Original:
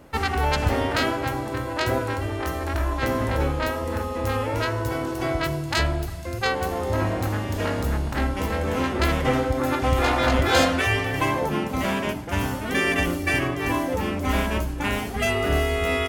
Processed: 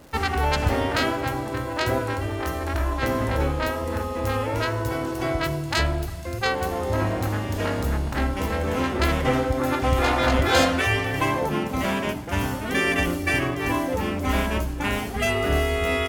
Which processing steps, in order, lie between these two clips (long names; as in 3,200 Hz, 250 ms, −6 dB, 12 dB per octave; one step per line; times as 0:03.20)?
surface crackle 330 per second −40 dBFS